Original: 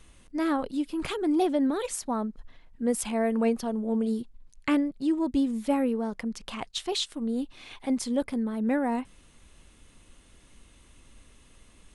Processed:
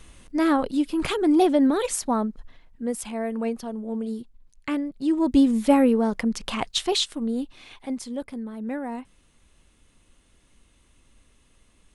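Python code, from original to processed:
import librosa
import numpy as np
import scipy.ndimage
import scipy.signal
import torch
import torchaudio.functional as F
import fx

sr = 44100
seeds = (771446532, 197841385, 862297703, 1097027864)

y = fx.gain(x, sr, db=fx.line((2.13, 6.0), (2.98, -2.5), (4.78, -2.5), (5.38, 8.0), (6.75, 8.0), (8.09, -4.5)))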